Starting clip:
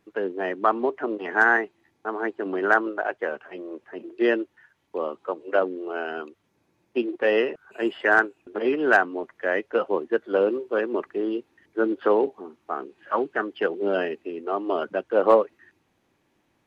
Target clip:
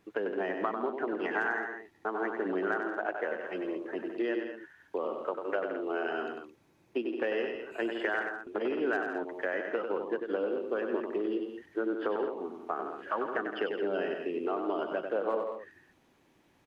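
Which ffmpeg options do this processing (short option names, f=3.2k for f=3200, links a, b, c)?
-af "acompressor=threshold=-31dB:ratio=6,aecho=1:1:96.21|166.2|215.7:0.501|0.316|0.282,volume=1dB"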